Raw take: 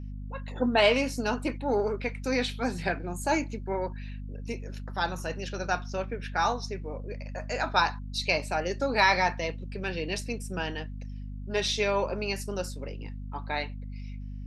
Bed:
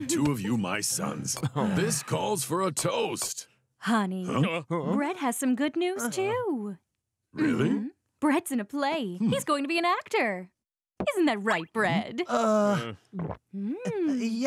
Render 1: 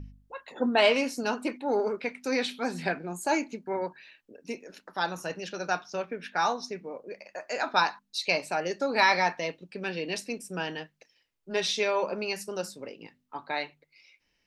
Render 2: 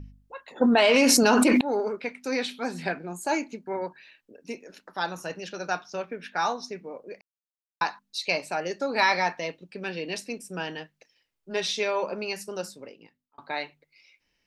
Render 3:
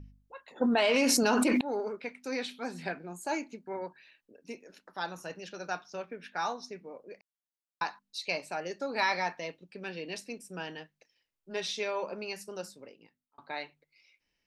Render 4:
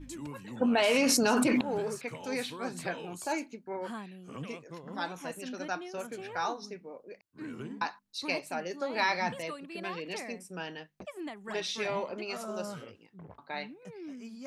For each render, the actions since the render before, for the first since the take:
de-hum 50 Hz, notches 5
0.61–1.61 fast leveller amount 100%; 7.21–7.81 mute; 12.66–13.38 fade out
gain -6.5 dB
add bed -16 dB

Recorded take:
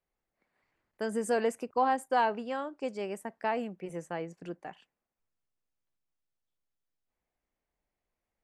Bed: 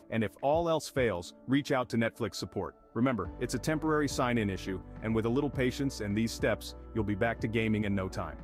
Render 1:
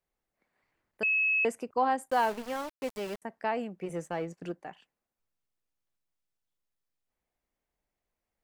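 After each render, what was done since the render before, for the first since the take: 1.03–1.45 bleep 2580 Hz -23.5 dBFS; 2.1–3.22 sample gate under -38 dBFS; 3.81–4.52 sample leveller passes 1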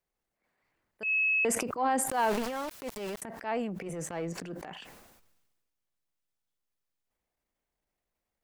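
transient shaper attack -9 dB, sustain +6 dB; sustainer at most 40 dB/s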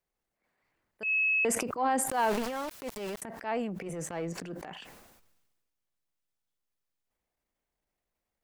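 nothing audible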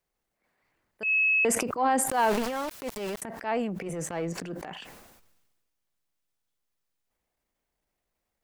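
gain +3.5 dB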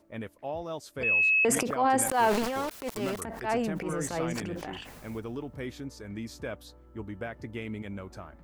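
add bed -7.5 dB

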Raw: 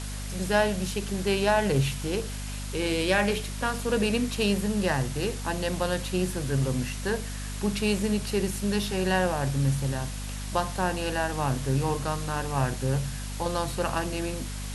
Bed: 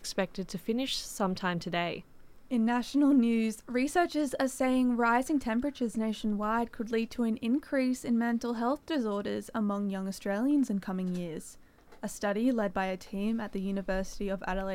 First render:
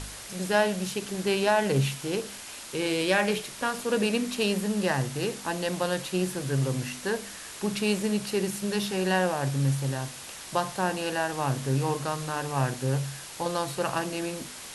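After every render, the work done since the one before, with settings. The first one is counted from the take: de-hum 50 Hz, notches 5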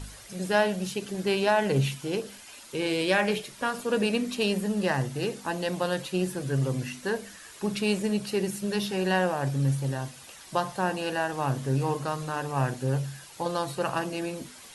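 denoiser 9 dB, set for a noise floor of -42 dBFS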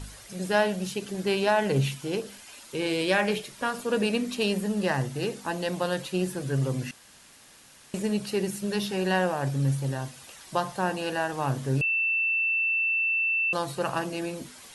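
6.91–7.94 room tone; 11.81–13.53 bleep 2670 Hz -22.5 dBFS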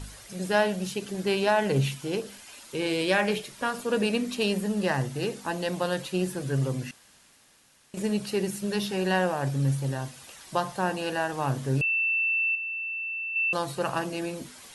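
6.61–7.97 fade out quadratic, to -8 dB; 12.55–13.36 ripple EQ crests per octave 1, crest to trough 17 dB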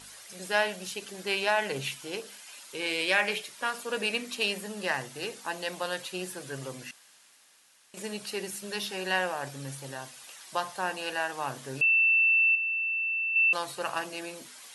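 HPF 910 Hz 6 dB/oct; dynamic EQ 2300 Hz, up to +5 dB, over -39 dBFS, Q 2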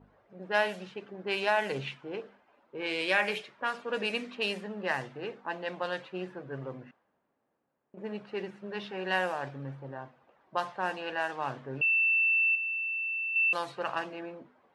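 low-pass opened by the level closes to 490 Hz, open at -24.5 dBFS; high shelf 4600 Hz -12 dB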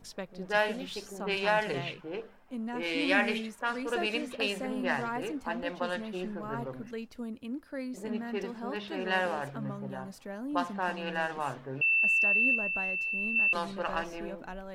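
add bed -9 dB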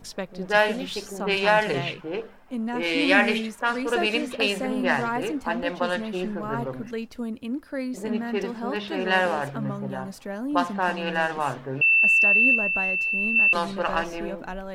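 gain +7.5 dB

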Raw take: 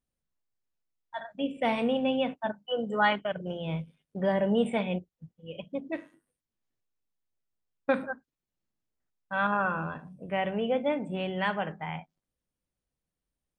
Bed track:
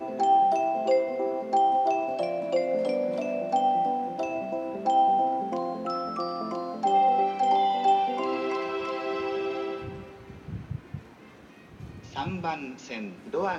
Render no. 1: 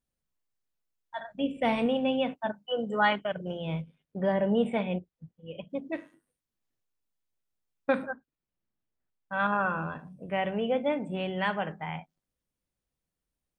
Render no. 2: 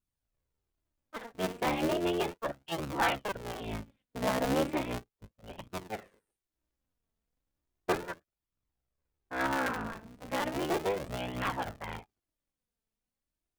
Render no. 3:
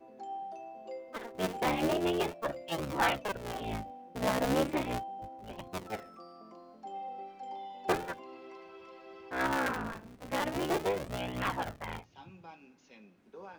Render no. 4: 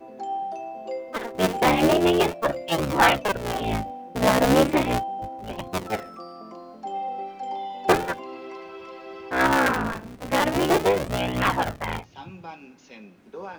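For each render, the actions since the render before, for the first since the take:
1.27–1.86 low shelf 120 Hz +10 dB; 3.81–5.7 LPF 3200 Hz 6 dB/oct; 8.11–9.4 air absorption 200 m
cycle switcher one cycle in 3, inverted; flange 0.35 Hz, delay 0.7 ms, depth 3.9 ms, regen +40%
add bed track -20 dB
gain +11 dB

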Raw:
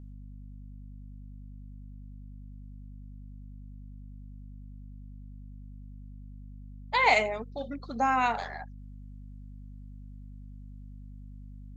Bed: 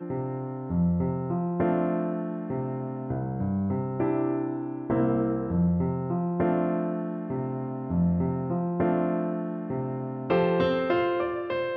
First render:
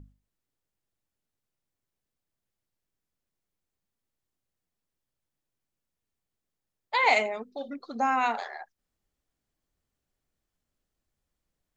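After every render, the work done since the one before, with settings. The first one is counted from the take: notches 50/100/150/200/250 Hz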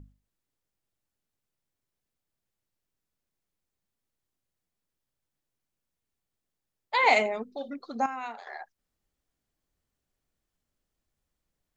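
6.97–7.56 low shelf 430 Hz +5.5 dB; 8.06–8.47 gain -11 dB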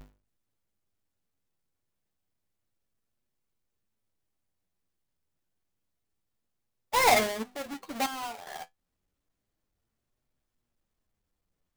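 half-waves squared off; flange 0.29 Hz, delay 7.8 ms, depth 4.1 ms, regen +54%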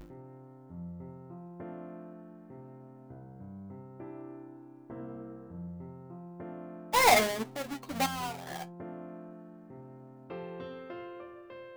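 add bed -18.5 dB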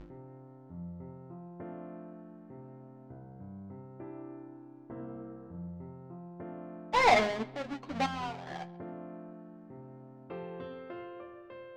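air absorption 150 m; analogue delay 0.136 s, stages 4096, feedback 35%, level -20.5 dB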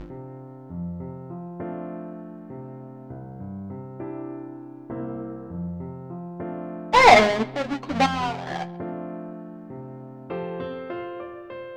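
gain +11 dB

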